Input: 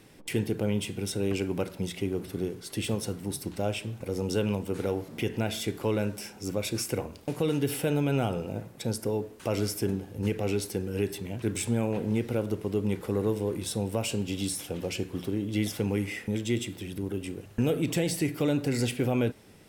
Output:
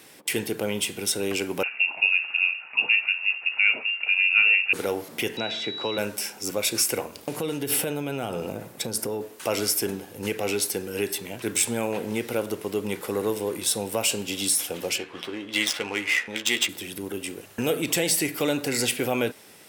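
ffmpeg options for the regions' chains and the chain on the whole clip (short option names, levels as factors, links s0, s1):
-filter_complex "[0:a]asettb=1/sr,asplit=3[s0][s1][s2];[s0]atrim=end=1.634[s3];[s1]atrim=start=1.63:end=4.73,asetpts=PTS-STARTPTS,afade=t=in:d=0.004:c=qsin,afade=t=out:st=3.096:d=0.004:c=qsin,asplit=2[s4][s5];[s5]adelay=15,volume=0.282[s6];[s4][s6]amix=inputs=2:normalize=0,atrim=end_sample=136710,lowpass=f=2500:t=q:w=0.5098,lowpass=f=2500:t=q:w=0.6013,lowpass=f=2500:t=q:w=0.9,lowpass=f=2500:t=q:w=2.563,afreqshift=-2900[s7];[s2]atrim=start=4.726[s8];[s3][s7]acrossfade=d=0.004:c1=hsin:c2=qsin[s9];[s9][s8]acrossfade=d=0.004:c1=qsin:c2=hsin,asettb=1/sr,asplit=3[s10][s11][s12];[s10]atrim=end=5.374[s13];[s11]atrim=start=5.37:end=5.98,asetpts=PTS-STARTPTS,afade=t=in:d=0.004:c=qsin,afade=t=out:st=0.606:d=0.004:c=qsin,lowpass=f=5900:w=0.5412,lowpass=f=5900:w=1.3066,acrossover=split=130|2900[s14][s15][s16];[s14]acompressor=threshold=0.00708:ratio=4[s17];[s15]acompressor=threshold=0.0398:ratio=4[s18];[s16]acompressor=threshold=0.00251:ratio=4[s19];[s17][s18][s19]amix=inputs=3:normalize=0,aeval=exprs='val(0)+0.00891*sin(2*PI*3900*n/s)':c=same[s20];[s12]atrim=start=5.976[s21];[s13][s20]acrossfade=d=0.004:c1=hsin:c2=qsin[s22];[s22][s21]acrossfade=d=0.004:c1=qsin:c2=hsin,asettb=1/sr,asplit=3[s23][s24][s25];[s23]atrim=end=7.154[s26];[s24]atrim=start=7.15:end=9.21,asetpts=PTS-STARTPTS,afade=t=in:d=0.004:c=qsin,afade=t=out:st=2.056:d=0.004:c=qsin,lowshelf=f=470:g=6.5,acompressor=threshold=0.0562:ratio=6:attack=3.2:release=140:knee=1:detection=peak[s27];[s25]atrim=start=9.206[s28];[s26][s27]acrossfade=d=0.004:c1=hsin:c2=qsin[s29];[s29][s28]acrossfade=d=0.004:c1=qsin:c2=hsin,asettb=1/sr,asplit=3[s30][s31][s32];[s30]atrim=end=14.984[s33];[s31]atrim=start=14.98:end=16.69,asetpts=PTS-STARTPTS,afade=t=in:d=0.004:c=qsin,afade=t=out:st=1.706:d=0.004:c=qsin,tiltshelf=f=730:g=-8.5,adynamicsmooth=sensitivity=3.5:basefreq=1900,asplit=2[s34][s35];[s35]adelay=13,volume=0.447[s36];[s34][s36]amix=inputs=2:normalize=0,atrim=end_sample=75411[s37];[s32]atrim=start=16.686[s38];[s33][s37]acrossfade=d=0.004:c1=hsin:c2=qsin[s39];[s39][s38]acrossfade=d=0.004:c1=qsin:c2=hsin,highpass=f=750:p=1,highshelf=f=9400:g=7,volume=2.66"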